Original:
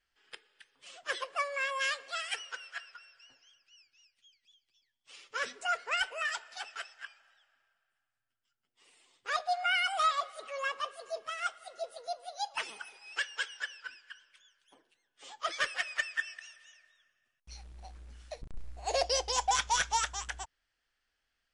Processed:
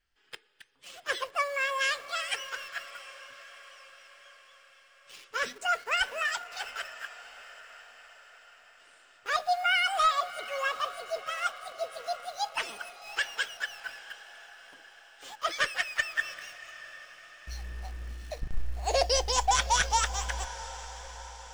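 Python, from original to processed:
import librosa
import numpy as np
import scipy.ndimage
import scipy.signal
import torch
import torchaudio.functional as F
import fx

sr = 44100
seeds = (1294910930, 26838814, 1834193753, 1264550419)

p1 = fx.low_shelf(x, sr, hz=180.0, db=8.0)
p2 = fx.quant_dither(p1, sr, seeds[0], bits=8, dither='none')
p3 = p1 + F.gain(torch.from_numpy(p2), -6.0).numpy()
y = fx.echo_diffused(p3, sr, ms=715, feedback_pct=56, wet_db=-15)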